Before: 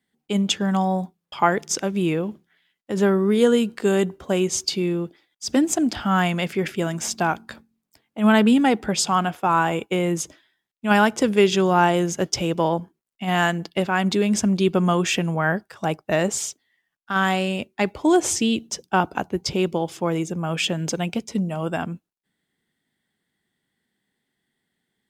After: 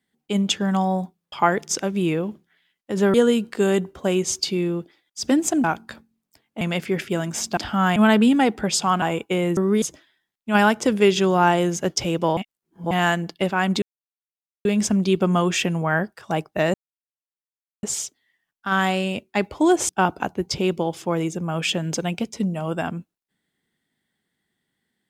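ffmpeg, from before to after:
-filter_complex "[0:a]asplit=14[a][b][c][d][e][f][g][h][i][j][k][l][m][n];[a]atrim=end=3.142[o];[b]atrim=start=3.388:end=5.892[p];[c]atrim=start=7.238:end=8.212[q];[d]atrim=start=6.278:end=7.242[r];[e]atrim=start=5.888:end=6.282[s];[f]atrim=start=8.208:end=9.272[t];[g]atrim=start=9.628:end=10.182[u];[h]atrim=start=3.138:end=3.392[v];[i]atrim=start=10.178:end=12.732[w];[j]atrim=start=12.728:end=13.272,asetpts=PTS-STARTPTS,areverse[x];[k]atrim=start=13.268:end=14.18,asetpts=PTS-STARTPTS,afade=t=out:st=0.908:d=0.004:c=hsin,apad=pad_dur=0.83[y];[l]atrim=start=14.18:end=16.27,asetpts=PTS-STARTPTS,afade=t=in:d=0.004:c=hsin,afade=t=out:st=2.086:d=0.004:c=hsin,apad=pad_dur=1.09[z];[m]atrim=start=16.27:end=18.332,asetpts=PTS-STARTPTS,afade=t=in:d=0.004:c=hsin[aa];[n]atrim=start=18.838[ab];[o][p]acrossfade=d=0.004:c1=hsin:c2=hsin[ac];[ac][q]acrossfade=d=0.004:c1=hsin:c2=hsin[ad];[ad][r]acrossfade=d=0.004:c1=hsin:c2=hsin[ae];[ae][s]acrossfade=d=0.004:c1=hsin:c2=hsin[af];[af][t]acrossfade=d=0.004:c1=hsin:c2=hsin[ag];[ag][u]acrossfade=d=0.004:c1=hsin:c2=hsin[ah];[ah][v]acrossfade=d=0.004:c1=hsin:c2=hsin[ai];[ai][w]acrossfade=d=0.004:c1=hsin:c2=hsin[aj];[aj][x]acrossfade=d=0.004:c1=hsin:c2=hsin[ak];[y][z][aa]concat=n=3:v=0:a=1[al];[ak][al]acrossfade=d=0.004:c1=hsin:c2=hsin[am];[am][ab]acrossfade=d=0.004:c1=hsin:c2=hsin"

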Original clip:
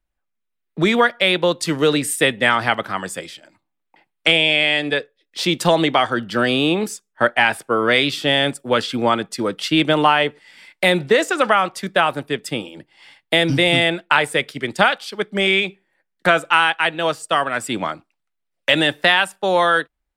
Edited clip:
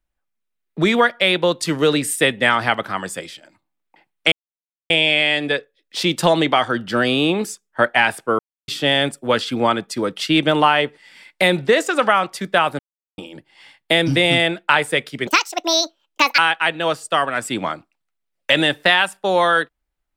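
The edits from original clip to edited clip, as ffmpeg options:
-filter_complex "[0:a]asplit=8[a][b][c][d][e][f][g][h];[a]atrim=end=4.32,asetpts=PTS-STARTPTS,afade=t=out:st=4.316:d=0.004:c=hsin,apad=pad_dur=0.58[i];[b]atrim=start=4.32:end=7.81,asetpts=PTS-STARTPTS,afade=t=in:d=0.004:c=hsin,afade=t=out:st=3.486:d=0.004:c=hsin[j];[c]atrim=start=7.81:end=8.1,asetpts=PTS-STARTPTS,volume=0[k];[d]atrim=start=8.1:end=12.21,asetpts=PTS-STARTPTS,afade=t=in:d=0.004:c=hsin,afade=t=out:st=4.106:d=0.004:c=hsin[l];[e]atrim=start=12.21:end=12.6,asetpts=PTS-STARTPTS,volume=0[m];[f]atrim=start=12.6:end=14.694,asetpts=PTS-STARTPTS,afade=t=in:d=0.004:c=hsin[n];[g]atrim=start=14.69:end=16.57,asetpts=PTS-STARTPTS,asetrate=74529,aresample=44100[o];[h]atrim=start=16.566[p];[i][j][k][l][m][n]concat=n=6:v=0:a=1[q];[q][o]acrossfade=d=0.004:c1=hsin:c2=hsin[r];[r][p]acrossfade=d=0.004:c1=hsin:c2=hsin"

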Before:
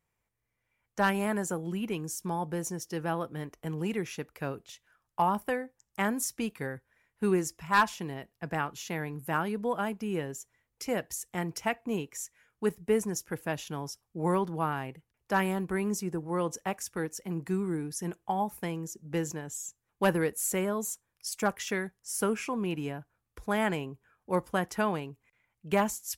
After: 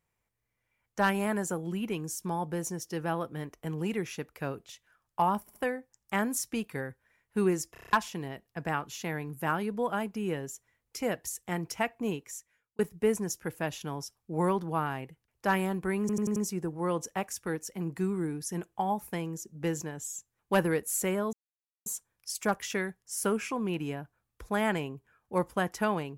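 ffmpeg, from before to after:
-filter_complex "[0:a]asplit=16[a][b][c][d][e][f][g][h][i][j][k][l][m][n][o][p];[a]atrim=end=5.482[q];[b]atrim=start=5.408:end=5.482[r];[c]atrim=start=5.408:end=7.612[s];[d]atrim=start=7.578:end=7.612[t];[e]atrim=start=7.578:end=7.612[u];[f]atrim=start=7.578:end=7.612[v];[g]atrim=start=7.578:end=7.612[w];[h]atrim=start=7.578:end=7.612[x];[i]atrim=start=7.578:end=7.612[y];[j]atrim=start=7.788:end=12.65,asetpts=PTS-STARTPTS,afade=t=out:st=4.202:d=0.66[z];[k]atrim=start=12.65:end=15.952,asetpts=PTS-STARTPTS,afade=t=in:d=0.004:c=hsin[aa];[l]atrim=start=15.858:end=15.952[ab];[m]atrim=start=15.858:end=15.952[ac];[n]atrim=start=15.858:end=15.952[ad];[o]atrim=start=15.858:end=20.83,asetpts=PTS-STARTPTS,afade=t=out:st=4.968:d=0.004:c=hsin,apad=pad_dur=0.53[ae];[p]atrim=start=20.83,asetpts=PTS-STARTPTS,afade=t=in:d=0.004:c=hsin[af];[q][r]acrossfade=d=0.004:c1=hsin:c2=hsin[ag];[ag][s]acrossfade=d=0.004:c1=hsin:c2=hsin[ah];[ah][t]acrossfade=d=0.004:c1=hsin:c2=hsin[ai];[ai][u]acrossfade=d=0.004:c1=hsin:c2=hsin[aj];[aj][v]acrossfade=d=0.004:c1=hsin:c2=hsin[ak];[ak][w]acrossfade=d=0.004:c1=hsin:c2=hsin[al];[al][x]acrossfade=d=0.004:c1=hsin:c2=hsin[am];[am][y]acrossfade=d=0.004:c1=hsin:c2=hsin[an];[z][aa]concat=n=2:v=0:a=1[ao];[an][ao]acrossfade=d=0.004:c1=hsin:c2=hsin[ap];[ap][ab]acrossfade=d=0.004:c1=hsin:c2=hsin[aq];[aq][ac]acrossfade=d=0.004:c1=hsin:c2=hsin[ar];[ar][ad]acrossfade=d=0.004:c1=hsin:c2=hsin[as];[ae][af]concat=n=2:v=0:a=1[at];[as][at]acrossfade=d=0.004:c1=hsin:c2=hsin"

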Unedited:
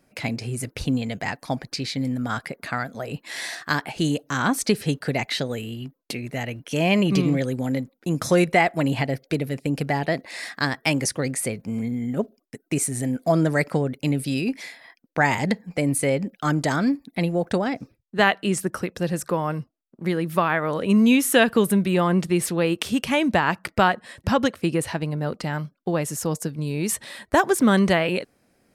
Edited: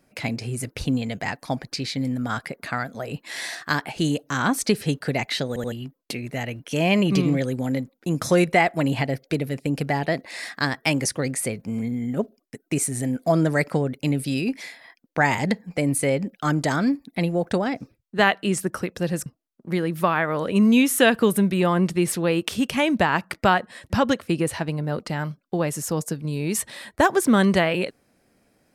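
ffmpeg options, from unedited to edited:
-filter_complex "[0:a]asplit=5[a][b][c][d][e];[a]atrim=end=5.562[f];[b]atrim=start=5.478:end=5.562[g];[c]atrim=start=5.478:end=5.562[h];[d]atrim=start=5.718:end=19.262[i];[e]atrim=start=19.598[j];[f][g]acrossfade=d=0.004:c1=hsin:c2=hsin[k];[k][h]acrossfade=d=0.004:c1=hsin:c2=hsin[l];[l][i]acrossfade=d=0.004:c1=hsin:c2=hsin[m];[m][j]acrossfade=d=0.004:c1=hsin:c2=hsin"

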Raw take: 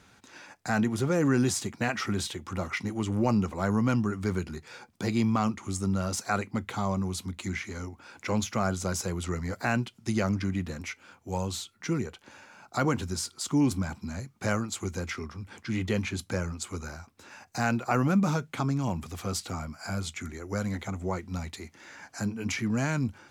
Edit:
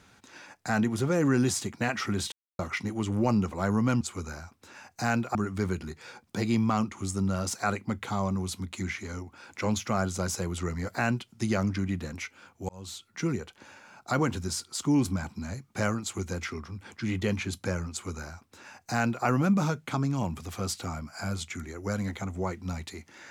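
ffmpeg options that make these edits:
-filter_complex "[0:a]asplit=6[a][b][c][d][e][f];[a]atrim=end=2.32,asetpts=PTS-STARTPTS,afade=t=out:st=2.316:d=0.004:c=hsin[g];[b]atrim=start=2.32:end=2.59,asetpts=PTS-STARTPTS,volume=0[h];[c]atrim=start=2.59:end=4.012,asetpts=PTS-STARTPTS,afade=t=in:d=0.004:c=hsin[i];[d]atrim=start=16.568:end=17.912[j];[e]atrim=start=4.008:end=11.35,asetpts=PTS-STARTPTS,afade=t=out:st=7.338:d=0.004:c=hsin[k];[f]atrim=start=11.35,asetpts=PTS-STARTPTS,afade=t=in:d=0.4[l];[g][h][i]concat=n=3:v=0:a=1[m];[m][j]acrossfade=d=0.004:c1=hsin:c2=hsin[n];[k][l]concat=n=2:v=0:a=1[o];[n][o]acrossfade=d=0.004:c1=hsin:c2=hsin"

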